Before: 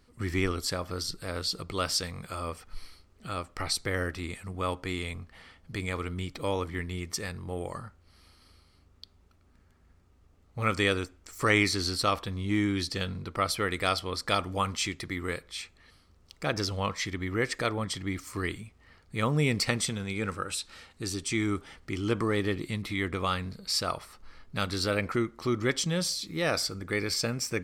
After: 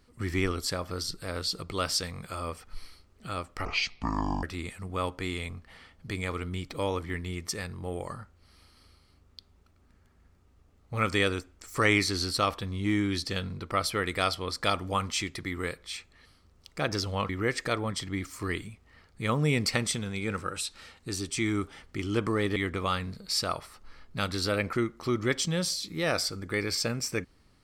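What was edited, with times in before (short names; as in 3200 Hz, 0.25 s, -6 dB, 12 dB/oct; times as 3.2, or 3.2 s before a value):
3.65–4.08 speed 55%
16.94–17.23 cut
22.5–22.95 cut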